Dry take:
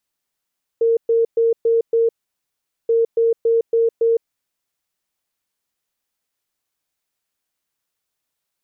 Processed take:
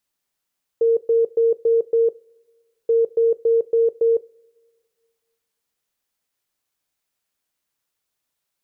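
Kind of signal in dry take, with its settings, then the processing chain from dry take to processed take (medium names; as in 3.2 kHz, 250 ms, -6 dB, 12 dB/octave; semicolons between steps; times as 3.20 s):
beep pattern sine 459 Hz, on 0.16 s, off 0.12 s, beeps 5, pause 0.80 s, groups 2, -12.5 dBFS
two-slope reverb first 0.29 s, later 1.8 s, from -18 dB, DRR 17.5 dB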